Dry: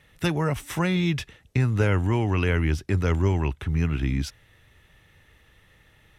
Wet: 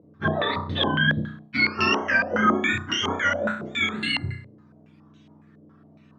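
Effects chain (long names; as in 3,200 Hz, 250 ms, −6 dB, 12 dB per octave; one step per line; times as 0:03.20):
frequency axis turned over on the octave scale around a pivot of 750 Hz
flutter between parallel walls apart 5.6 metres, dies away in 0.51 s
low-pass on a step sequencer 7.2 Hz 540–3,000 Hz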